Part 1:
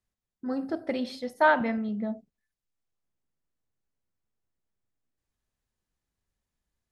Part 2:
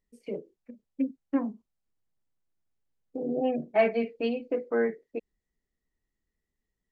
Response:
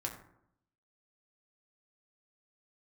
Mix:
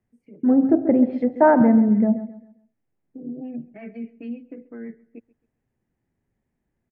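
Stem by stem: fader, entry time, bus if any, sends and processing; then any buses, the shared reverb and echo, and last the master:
+2.0 dB, 0.00 s, no send, echo send −13 dB, low-pass filter 3,700 Hz 6 dB per octave; flat-topped bell 550 Hz +8.5 dB
−10.5 dB, 0.00 s, no send, echo send −21.5 dB, rotating-speaker cabinet horn 7.5 Hz; brickwall limiter −23.5 dBFS, peak gain reduction 10.5 dB; automatic ducking −14 dB, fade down 1.00 s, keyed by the first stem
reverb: not used
echo: repeating echo 134 ms, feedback 31%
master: treble cut that deepens with the level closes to 1,100 Hz, closed at −21 dBFS; octave-band graphic EQ 125/250/500/1,000/2,000/4,000 Hz +11/+11/−3/−3/+8/−12 dB

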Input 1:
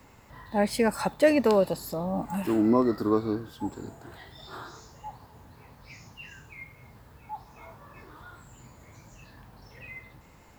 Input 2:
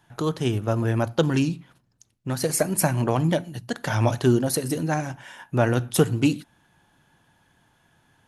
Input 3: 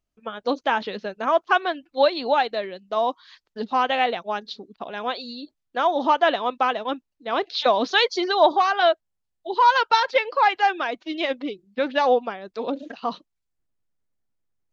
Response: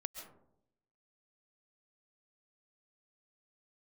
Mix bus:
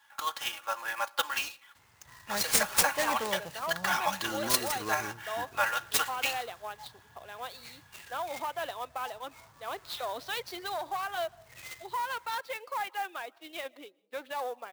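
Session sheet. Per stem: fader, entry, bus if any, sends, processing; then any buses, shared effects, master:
−7.0 dB, 1.75 s, no send, octave-band graphic EQ 250/500/2,000 Hz −11/−7/+7 dB; short delay modulated by noise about 5,400 Hz, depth 0.062 ms
−1.0 dB, 0.00 s, send −22.5 dB, high-pass filter 930 Hz 24 dB per octave; comb filter 3.6 ms, depth 93%
−12.0 dB, 2.35 s, send −17.5 dB, one-sided soft clipper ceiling −10.5 dBFS; brickwall limiter −14 dBFS, peak gain reduction 8 dB; high-pass filter 540 Hz 12 dB per octave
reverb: on, RT60 0.75 s, pre-delay 95 ms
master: high-pass filter 81 Hz; converter with an unsteady clock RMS 0.02 ms

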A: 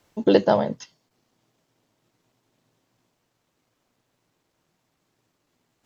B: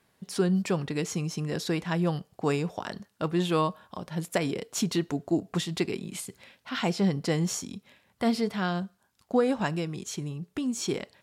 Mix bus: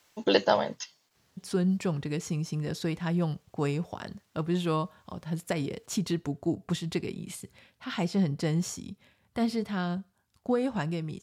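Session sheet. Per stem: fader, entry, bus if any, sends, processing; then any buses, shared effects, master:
−3.5 dB, 0.00 s, no send, tilt shelving filter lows −7.5 dB, about 760 Hz
−4.5 dB, 1.15 s, no send, parametric band 80 Hz +9.5 dB 2 octaves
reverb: not used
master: no processing

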